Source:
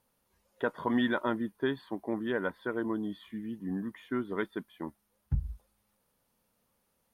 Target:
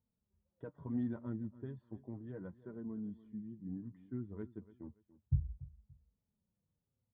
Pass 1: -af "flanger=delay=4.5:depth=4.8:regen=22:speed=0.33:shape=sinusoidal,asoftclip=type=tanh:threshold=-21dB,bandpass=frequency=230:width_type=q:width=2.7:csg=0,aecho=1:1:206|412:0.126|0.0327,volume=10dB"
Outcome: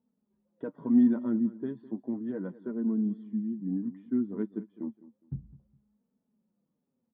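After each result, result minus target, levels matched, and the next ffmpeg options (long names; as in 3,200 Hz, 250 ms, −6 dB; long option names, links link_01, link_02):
125 Hz band −13.5 dB; echo 81 ms early
-af "flanger=delay=4.5:depth=4.8:regen=22:speed=0.33:shape=sinusoidal,asoftclip=type=tanh:threshold=-21dB,bandpass=frequency=88:width_type=q:width=2.7:csg=0,aecho=1:1:206|412:0.126|0.0327,volume=10dB"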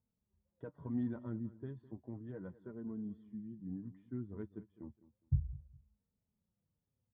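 echo 81 ms early
-af "flanger=delay=4.5:depth=4.8:regen=22:speed=0.33:shape=sinusoidal,asoftclip=type=tanh:threshold=-21dB,bandpass=frequency=88:width_type=q:width=2.7:csg=0,aecho=1:1:287|574:0.126|0.0327,volume=10dB"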